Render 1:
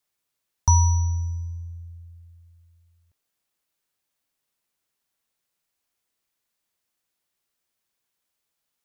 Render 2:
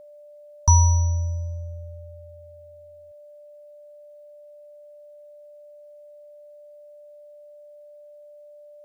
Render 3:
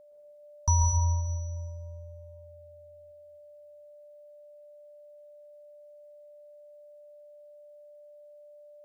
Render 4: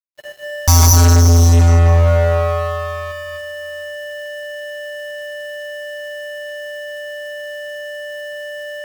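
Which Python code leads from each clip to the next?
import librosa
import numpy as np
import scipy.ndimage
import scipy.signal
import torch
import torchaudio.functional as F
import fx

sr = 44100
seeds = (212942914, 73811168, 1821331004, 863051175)

y1 = x + 0.37 * np.pad(x, (int(1.9 * sr / 1000.0), 0))[:len(x)]
y1 = y1 + 10.0 ** (-44.0 / 20.0) * np.sin(2.0 * np.pi * 590.0 * np.arange(len(y1)) / sr)
y2 = fx.rev_plate(y1, sr, seeds[0], rt60_s=1.6, hf_ratio=0.7, predelay_ms=105, drr_db=1.0)
y2 = y2 * 10.0 ** (-8.5 / 20.0)
y3 = fx.fuzz(y2, sr, gain_db=47.0, gate_db=-51.0)
y3 = fx.notch_comb(y3, sr, f0_hz=230.0)
y3 = y3 * 10.0 ** (6.0 / 20.0)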